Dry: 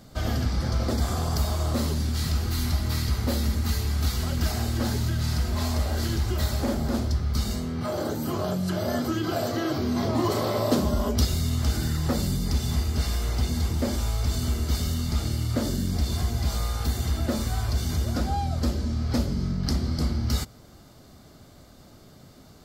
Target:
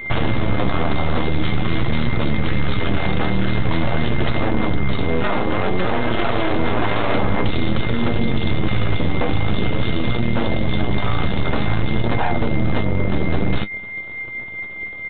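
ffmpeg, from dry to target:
-af "acompressor=threshold=-34dB:ratio=2.5,atempo=1.5,aeval=exprs='0.112*(cos(1*acos(clip(val(0)/0.112,-1,1)))-cos(1*PI/2))+0.0282*(cos(6*acos(clip(val(0)/0.112,-1,1)))-cos(6*PI/2))+0.0158*(cos(7*acos(clip(val(0)/0.112,-1,1)))-cos(7*PI/2))':c=same,aeval=exprs='val(0)+0.00282*sin(2*PI*2100*n/s)':c=same,aresample=8000,volume=26.5dB,asoftclip=hard,volume=-26.5dB,aresample=44100,flanger=delay=8.4:depth=2.1:regen=49:speed=0.49:shape=triangular,alimiter=level_in=34.5dB:limit=-1dB:release=50:level=0:latency=1,volume=-7dB"

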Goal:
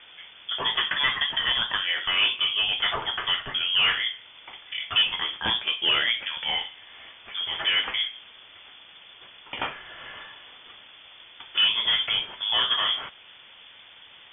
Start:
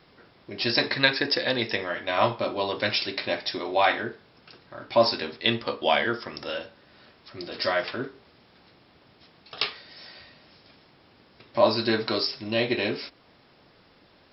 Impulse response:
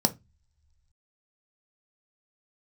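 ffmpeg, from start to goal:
-filter_complex "[0:a]asplit=2[a][b];[b]acompressor=threshold=-34dB:ratio=6,volume=2.5dB[c];[a][c]amix=inputs=2:normalize=0,asoftclip=type=tanh:threshold=-17.5dB,lowpass=f=3.1k:t=q:w=0.5098,lowpass=f=3.1k:t=q:w=0.6013,lowpass=f=3.1k:t=q:w=0.9,lowpass=f=3.1k:t=q:w=2.563,afreqshift=-3600,volume=1.5dB"

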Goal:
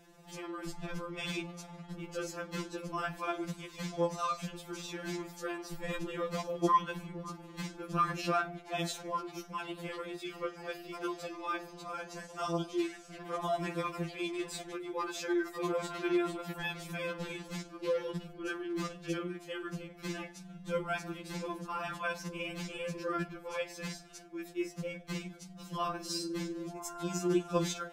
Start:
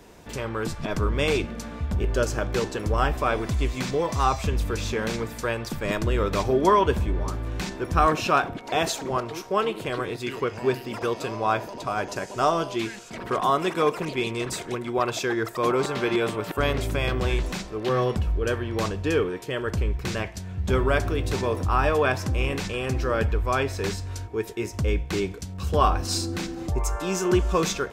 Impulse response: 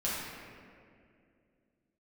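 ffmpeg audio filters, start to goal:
-af "tremolo=f=20:d=0.519,afftfilt=real='re*2.83*eq(mod(b,8),0)':imag='im*2.83*eq(mod(b,8),0)':win_size=2048:overlap=0.75,volume=-5.5dB"

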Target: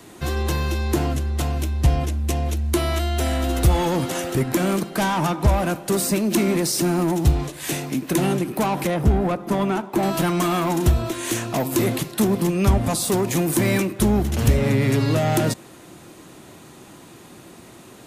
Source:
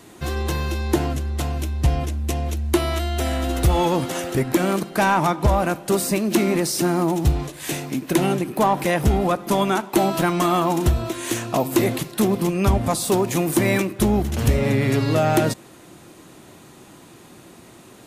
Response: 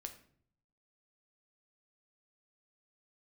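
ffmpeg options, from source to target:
-filter_complex "[0:a]asettb=1/sr,asplit=3[a][b][c];[a]atrim=end=8.874[d];[b]atrim=start=8.87:end=10.03,asetpts=PTS-STARTPTS,afade=t=in:d=0.004:c=qsin,afade=t=out:st=1.156:d=0.004:c=qsin,highshelf=f=2.1k:g=-11[e];[c]atrim=start=10.026[f];[d][e]acrossfade=d=0.004:c1=hsin:c2=qsin[g];[g][f]acrossfade=d=0.004:c1=qsin:c2=hsin,acrossover=split=250|4600[h][i][j];[i]asoftclip=type=tanh:threshold=-21dB[k];[h][k][j]amix=inputs=3:normalize=0,volume=1.5dB"

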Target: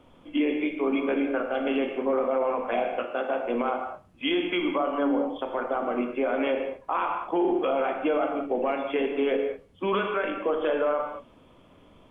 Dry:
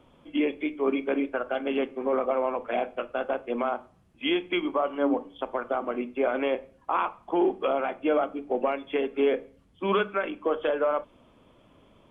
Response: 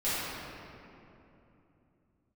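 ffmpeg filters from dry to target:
-filter_complex "[0:a]asplit=2[a][b];[1:a]atrim=start_sample=2205,afade=t=out:st=0.27:d=0.01,atrim=end_sample=12348[c];[b][c]afir=irnorm=-1:irlink=0,volume=-11.5dB[d];[a][d]amix=inputs=2:normalize=0,alimiter=limit=-17dB:level=0:latency=1:release=30,asettb=1/sr,asplit=3[e][f][g];[e]atrim=end=3.044[h];[f]atrim=start=3.04:end=3.45,asetpts=PTS-STARTPTS,afade=t=in:d=0.004:c=qsin,afade=t=out:st=0.406:d=0.004:c=qsin,highpass=170[i];[g]atrim=start=3.446[j];[h][i]acrossfade=d=0.004:c1=hsin:c2=qsin[k];[k][j]acrossfade=d=0.004:c1=qsin:c2=hsin"

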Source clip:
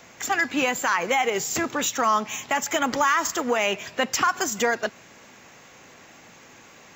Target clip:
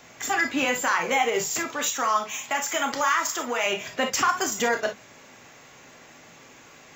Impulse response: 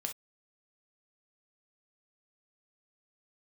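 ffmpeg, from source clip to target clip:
-filter_complex "[0:a]asettb=1/sr,asplit=3[a][b][c];[a]atrim=end=1.484[d];[b]atrim=start=1.48:end=3.66,asetpts=PTS-STARTPTS,afade=t=in:d=0.004:c=qsin,afade=t=out:st=2.176:d=0.004:c=qsin,lowshelf=f=500:g=-9[e];[c]atrim=start=3.656[f];[d][e]acrossfade=d=0.004:c1=hsin:c2=qsin[g];[g][f]acrossfade=d=0.004:c1=qsin:c2=hsin[h];[1:a]atrim=start_sample=2205[i];[h][i]afir=irnorm=-1:irlink=0"

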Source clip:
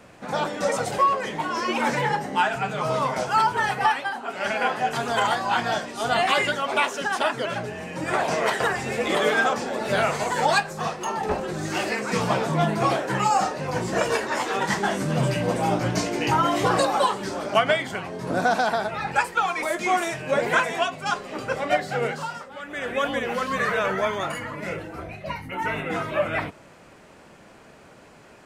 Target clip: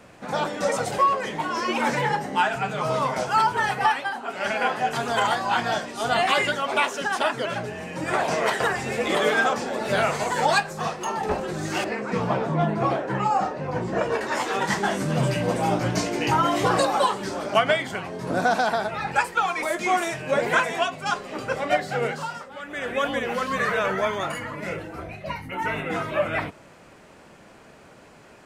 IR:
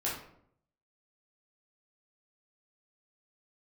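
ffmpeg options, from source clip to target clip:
-filter_complex "[0:a]asettb=1/sr,asplit=3[a][b][c];[a]atrim=end=11.844[d];[b]atrim=start=11.84:end=14.21,asetpts=PTS-STARTPTS,afade=t=in:d=0.004:c=qsin,afade=t=out:st=2.366:d=0.004:c=qsin,lowpass=f=1.4k:p=1[e];[c]atrim=start=14.206[f];[d][e]acrossfade=d=0.004:c1=hsin:c2=qsin[g];[g][f]acrossfade=d=0.004:c1=qsin:c2=hsin"

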